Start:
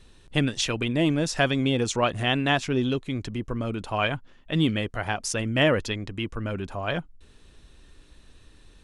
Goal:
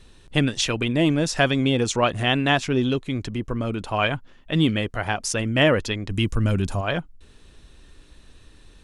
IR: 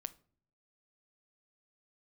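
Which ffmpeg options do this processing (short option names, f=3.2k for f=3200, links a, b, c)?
-filter_complex "[0:a]asplit=3[a][b][c];[a]afade=t=out:st=6.09:d=0.02[d];[b]bass=f=250:g=9,treble=f=4k:g=14,afade=t=in:st=6.09:d=0.02,afade=t=out:st=6.8:d=0.02[e];[c]afade=t=in:st=6.8:d=0.02[f];[d][e][f]amix=inputs=3:normalize=0,volume=3dB"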